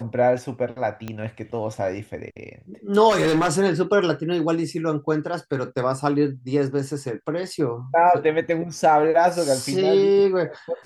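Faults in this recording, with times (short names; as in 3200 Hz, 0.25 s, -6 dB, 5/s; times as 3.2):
1.08 pop -17 dBFS
3.09–3.53 clipped -15.5 dBFS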